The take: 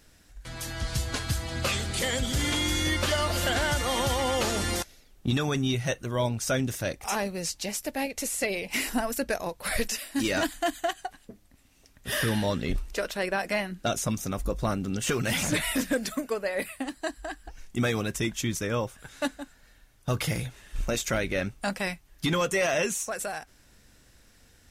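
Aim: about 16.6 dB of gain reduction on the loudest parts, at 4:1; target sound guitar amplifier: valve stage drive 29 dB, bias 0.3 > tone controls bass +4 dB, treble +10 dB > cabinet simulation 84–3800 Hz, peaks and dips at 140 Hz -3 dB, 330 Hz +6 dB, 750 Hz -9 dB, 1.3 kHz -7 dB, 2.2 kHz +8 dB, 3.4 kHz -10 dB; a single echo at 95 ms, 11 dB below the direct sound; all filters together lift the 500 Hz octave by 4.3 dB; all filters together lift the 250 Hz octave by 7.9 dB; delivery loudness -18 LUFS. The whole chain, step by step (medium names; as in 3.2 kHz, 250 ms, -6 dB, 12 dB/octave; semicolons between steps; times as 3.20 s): peaking EQ 250 Hz +4 dB; peaking EQ 500 Hz +4.5 dB; compression 4:1, threshold -40 dBFS; delay 95 ms -11 dB; valve stage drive 29 dB, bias 0.3; tone controls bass +4 dB, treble +10 dB; cabinet simulation 84–3800 Hz, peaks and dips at 140 Hz -3 dB, 330 Hz +6 dB, 750 Hz -9 dB, 1.3 kHz -7 dB, 2.2 kHz +8 dB, 3.4 kHz -10 dB; trim +23 dB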